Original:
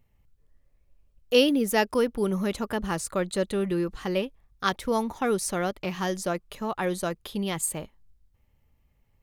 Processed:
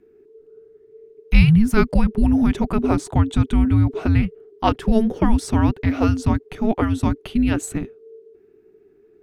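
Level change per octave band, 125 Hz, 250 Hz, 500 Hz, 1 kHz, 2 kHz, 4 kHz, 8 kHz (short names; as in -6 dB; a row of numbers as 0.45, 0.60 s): +17.5, +10.5, 0.0, +4.5, +3.0, -3.0, -3.5 dB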